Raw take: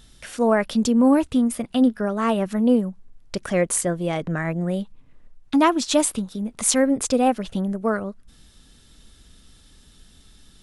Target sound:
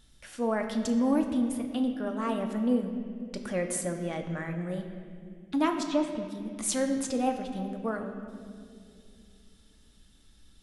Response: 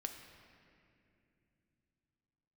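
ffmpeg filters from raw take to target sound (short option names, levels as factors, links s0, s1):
-filter_complex "[0:a]asettb=1/sr,asplit=3[s0][s1][s2];[s0]atrim=end=5.834[s3];[s1]atrim=start=5.83:end=6.25,asetpts=PTS-STARTPTS,afade=t=in:d=0.004:c=qsin,afade=t=out:st=0.416:d=0.004:c=qsin,lowpass=2700[s4];[s2]atrim=start=6.246[s5];[s3][s4]acrossfade=d=0.004:c1=hsin:c2=qsin[s6];[s6][s5]acrossfade=d=0.004:c1=qsin:c2=hsin[s7];[1:a]atrim=start_sample=2205,asetrate=52920,aresample=44100[s8];[s7][s8]afir=irnorm=-1:irlink=0,volume=0.531"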